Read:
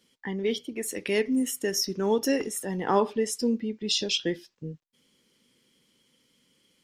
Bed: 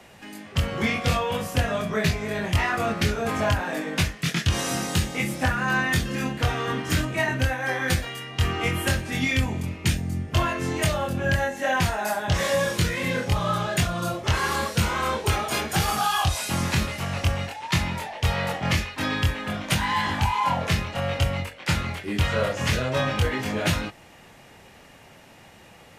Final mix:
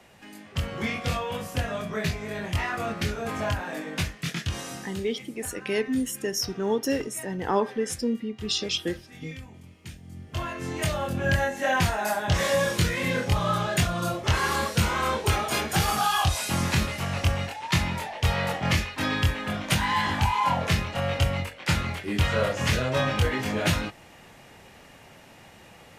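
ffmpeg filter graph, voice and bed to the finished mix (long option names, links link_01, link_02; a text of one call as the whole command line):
ffmpeg -i stem1.wav -i stem2.wav -filter_complex "[0:a]adelay=4600,volume=-1dB[link_01];[1:a]volume=13.5dB,afade=type=out:start_time=4.25:duration=0.8:silence=0.199526,afade=type=in:start_time=10:duration=1.34:silence=0.11885[link_02];[link_01][link_02]amix=inputs=2:normalize=0" out.wav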